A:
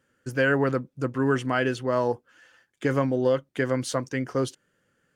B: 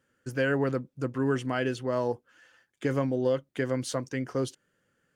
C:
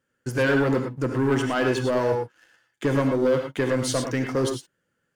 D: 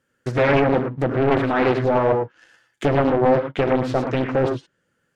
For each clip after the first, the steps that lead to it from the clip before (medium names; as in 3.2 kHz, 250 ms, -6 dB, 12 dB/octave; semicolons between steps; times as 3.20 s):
dynamic bell 1.3 kHz, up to -4 dB, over -36 dBFS, Q 0.95; trim -3 dB
waveshaping leveller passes 2; reverberation, pre-delay 3 ms, DRR 3.5 dB
low-pass that closes with the level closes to 1.9 kHz, closed at -22.5 dBFS; loudspeaker Doppler distortion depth 0.93 ms; trim +5 dB